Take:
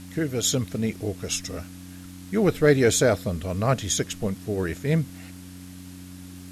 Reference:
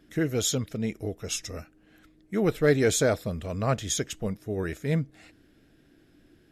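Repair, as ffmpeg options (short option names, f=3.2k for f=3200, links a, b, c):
-af "adeclick=t=4,bandreject=f=91.1:t=h:w=4,bandreject=f=182.2:t=h:w=4,bandreject=f=273.3:t=h:w=4,afwtdn=0.0035,asetnsamples=n=441:p=0,asendcmd='0.43 volume volume -3.5dB',volume=0dB"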